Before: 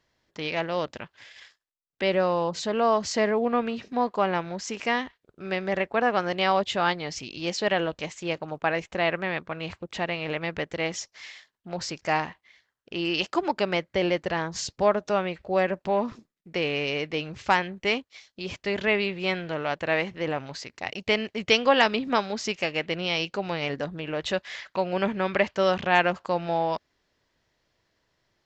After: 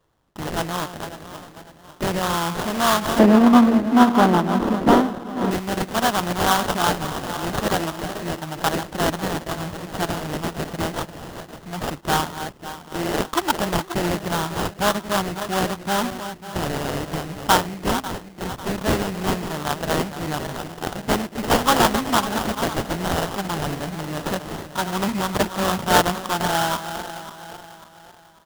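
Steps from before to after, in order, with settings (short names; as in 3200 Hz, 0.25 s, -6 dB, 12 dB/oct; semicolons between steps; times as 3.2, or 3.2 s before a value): regenerating reverse delay 0.273 s, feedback 62%, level -10 dB; bell 5200 Hz +4.5 dB 0.85 oct; comb 1 ms, depth 77%; sample-rate reducer 2300 Hz, jitter 20%; 3.19–5.51 EQ curve 130 Hz 0 dB, 230 Hz +12 dB, 7900 Hz -8 dB; gain +2 dB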